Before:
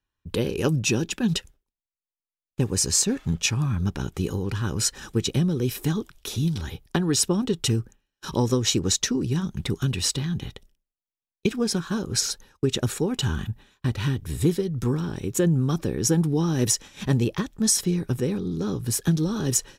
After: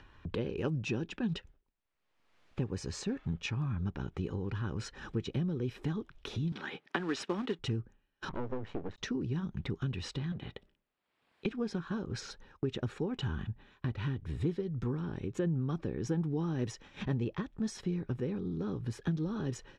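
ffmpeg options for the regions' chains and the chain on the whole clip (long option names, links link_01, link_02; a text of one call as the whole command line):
ffmpeg -i in.wav -filter_complex "[0:a]asettb=1/sr,asplit=3[link_01][link_02][link_03];[link_01]atrim=end=6.524[link_04];[link_02]atrim=start=6.52:end=7.59,asetpts=PTS-STARTPTS,afade=type=in:duration=0.004:curve=qsin,afade=type=out:start_time=1.066:duration=0.004:curve=qsin,highpass=frequency=210:width=0.5412,highpass=frequency=210:width=1.3066,equalizer=frequency=1900:width=0.62:gain=9,acrusher=bits=3:mode=log:mix=0:aa=0.000001[link_05];[link_03]atrim=start=7.586[link_06];[link_04][link_05]acrossfade=duration=0.004:curve1=hsin:curve2=qsin[link_07];[link_07][link_06]acrossfade=duration=0.004:curve1=qsin:curve2=hsin,asettb=1/sr,asplit=3[link_08][link_09][link_10];[link_08]atrim=end=8.294[link_11];[link_09]atrim=start=8.29:end=8.98,asetpts=PTS-STARTPTS,afade=type=in:duration=0.004:curve=qsin,afade=type=out:start_time=0.686:duration=0.004:curve=qsin,lowpass=1500,aeval=exprs='max(val(0),0)':channel_layout=same[link_12];[link_10]atrim=start=8.976[link_13];[link_11][link_12]acrossfade=duration=0.004:curve1=hsin:curve2=qsin[link_14];[link_14][link_13]acrossfade=duration=0.004:curve1=qsin:curve2=hsin,asettb=1/sr,asplit=3[link_15][link_16][link_17];[link_15]atrim=end=10.324[link_18];[link_16]atrim=start=10.32:end=11.46,asetpts=PTS-STARTPTS,afade=type=in:duration=0.004:curve=qsin,afade=type=out:start_time=1.136:duration=0.004:curve=qsin,highpass=frequency=190:poles=1,equalizer=frequency=6100:width_type=o:width=0.31:gain=-11.5,asoftclip=type=hard:threshold=-29dB[link_19];[link_17]atrim=start=11.456[link_20];[link_18][link_19]acrossfade=duration=0.004:curve1=hsin:curve2=qsin[link_21];[link_21][link_20]acrossfade=duration=0.004:curve1=qsin:curve2=hsin,acompressor=mode=upward:threshold=-25dB:ratio=2.5,lowpass=2600,acompressor=threshold=-31dB:ratio=1.5,volume=-6dB" out.wav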